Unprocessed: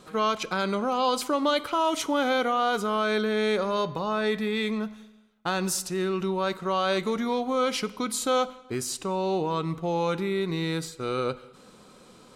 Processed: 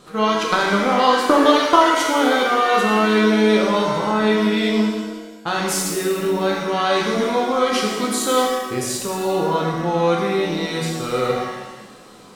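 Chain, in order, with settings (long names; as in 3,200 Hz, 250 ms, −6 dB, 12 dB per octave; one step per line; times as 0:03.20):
0:00.49–0:01.95: transient designer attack +12 dB, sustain −10 dB
reverb with rising layers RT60 1.2 s, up +7 semitones, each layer −8 dB, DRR −2 dB
level +3 dB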